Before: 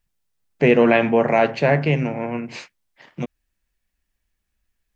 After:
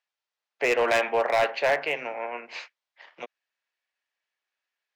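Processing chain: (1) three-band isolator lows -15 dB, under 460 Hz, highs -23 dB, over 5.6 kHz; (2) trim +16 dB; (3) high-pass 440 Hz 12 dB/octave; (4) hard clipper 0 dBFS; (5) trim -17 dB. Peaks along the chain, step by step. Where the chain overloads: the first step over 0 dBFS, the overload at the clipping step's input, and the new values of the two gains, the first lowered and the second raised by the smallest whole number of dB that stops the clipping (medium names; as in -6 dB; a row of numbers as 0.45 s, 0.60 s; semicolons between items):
-5.5 dBFS, +10.5 dBFS, +9.5 dBFS, 0.0 dBFS, -17.0 dBFS; step 2, 9.5 dB; step 2 +6 dB, step 5 -7 dB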